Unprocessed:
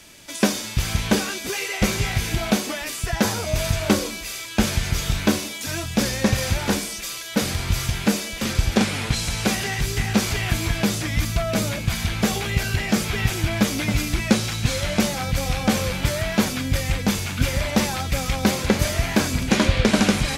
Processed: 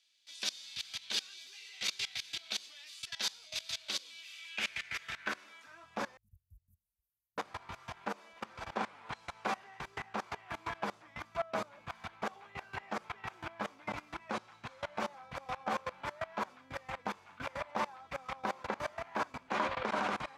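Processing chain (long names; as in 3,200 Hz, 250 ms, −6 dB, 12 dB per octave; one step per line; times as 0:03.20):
output level in coarse steps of 23 dB
band-pass filter sweep 3,900 Hz → 1,000 Hz, 0:03.93–0:06.00
0:06.17–0:07.38: inverse Chebyshev band-stop filter 420–3,700 Hz, stop band 80 dB
level +2.5 dB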